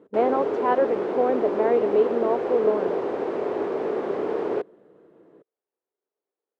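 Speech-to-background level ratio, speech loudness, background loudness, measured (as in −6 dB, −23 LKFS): 3.0 dB, −24.0 LKFS, −27.0 LKFS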